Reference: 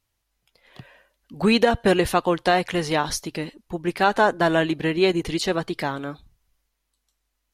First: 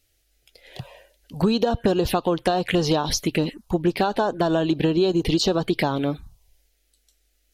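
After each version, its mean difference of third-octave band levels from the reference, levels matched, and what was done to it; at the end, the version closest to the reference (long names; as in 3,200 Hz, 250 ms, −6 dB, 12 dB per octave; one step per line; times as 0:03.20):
4.5 dB: in parallel at −3 dB: brickwall limiter −17.5 dBFS, peak gain reduction 11.5 dB
on the sum: downward compressor 12 to 1, threshold −21 dBFS, peak gain reduction 11.5 dB
phaser swept by the level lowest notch 170 Hz, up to 2,100 Hz, full sweep at −22 dBFS
level +5.5 dB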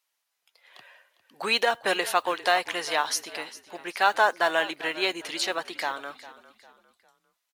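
8.0 dB: high-pass filter 760 Hz 12 dB per octave
noise that follows the level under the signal 33 dB
on a send: echo with shifted repeats 402 ms, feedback 37%, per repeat −37 Hz, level −17 dB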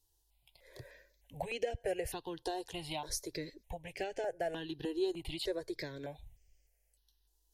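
6.0 dB: downward compressor 3 to 1, threshold −36 dBFS, peak gain reduction 17.5 dB
phaser with its sweep stopped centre 520 Hz, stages 4
step-sequenced phaser 3.3 Hz 600–3,800 Hz
level +3 dB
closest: first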